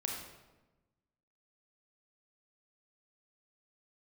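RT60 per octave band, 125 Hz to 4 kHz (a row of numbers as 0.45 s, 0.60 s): 1.5 s, 1.4 s, 1.2 s, 1.0 s, 0.90 s, 0.75 s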